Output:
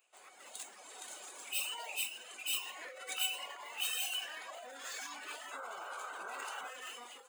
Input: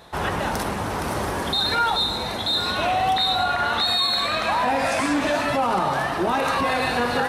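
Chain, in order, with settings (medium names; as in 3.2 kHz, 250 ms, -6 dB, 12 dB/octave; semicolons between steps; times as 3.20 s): in parallel at -2 dB: hard clipper -27.5 dBFS, distortion -6 dB; on the sum: reverb removal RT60 1.4 s; formant shift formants -6 st; high-pass 250 Hz 24 dB/octave; peaking EQ 4.4 kHz -5 dB 0.34 oct; band-stop 5.7 kHz, Q 5.6; feedback comb 750 Hz, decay 0.43 s, mix 80%; level rider gain up to 10.5 dB; painted sound noise, 5.51–6.69 s, 370–1600 Hz -24 dBFS; differentiator; trim -5.5 dB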